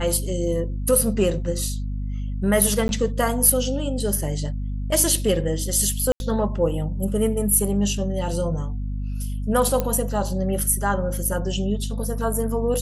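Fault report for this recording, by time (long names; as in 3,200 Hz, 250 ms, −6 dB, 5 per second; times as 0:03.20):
mains hum 50 Hz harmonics 5 −27 dBFS
0:02.88–0:02.89: drop-out 11 ms
0:06.12–0:06.20: drop-out 81 ms
0:09.80: click −9 dBFS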